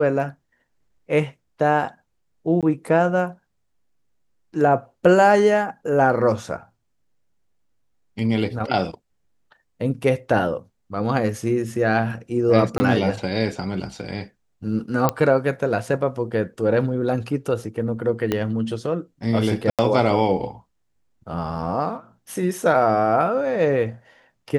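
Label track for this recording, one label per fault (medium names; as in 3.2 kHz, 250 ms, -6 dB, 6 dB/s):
2.610000	2.630000	dropout 17 ms
12.780000	12.800000	dropout 20 ms
15.090000	15.090000	pop -5 dBFS
18.320000	18.320000	pop -8 dBFS
19.700000	19.790000	dropout 87 ms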